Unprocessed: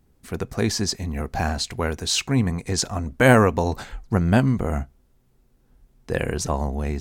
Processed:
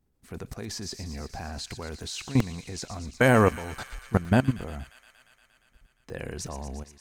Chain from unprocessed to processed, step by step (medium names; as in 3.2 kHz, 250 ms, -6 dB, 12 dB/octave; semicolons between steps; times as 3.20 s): fade out at the end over 0.62 s; level held to a coarse grid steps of 18 dB; on a send: feedback echo behind a high-pass 117 ms, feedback 80%, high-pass 2.5 kHz, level -10 dB; on the sum: crackling interface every 0.37 s, samples 128, zero, from 0.92 s